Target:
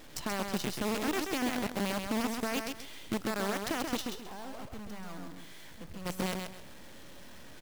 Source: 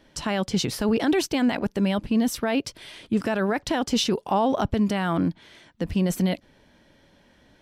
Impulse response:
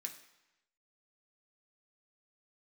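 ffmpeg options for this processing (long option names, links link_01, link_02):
-filter_complex "[0:a]aeval=exprs='val(0)+0.5*0.00944*sgn(val(0))':channel_layout=same,acompressor=threshold=-26dB:ratio=4,acrusher=bits=5:dc=4:mix=0:aa=0.000001,asplit=3[link_01][link_02][link_03];[link_01]afade=type=out:start_time=4:duration=0.02[link_04];[link_02]volume=34.5dB,asoftclip=hard,volume=-34.5dB,afade=type=in:start_time=4:duration=0.02,afade=type=out:start_time=6.05:duration=0.02[link_05];[link_03]afade=type=in:start_time=6.05:duration=0.02[link_06];[link_04][link_05][link_06]amix=inputs=3:normalize=0,aecho=1:1:132|264|396:0.562|0.141|0.0351,volume=-6dB"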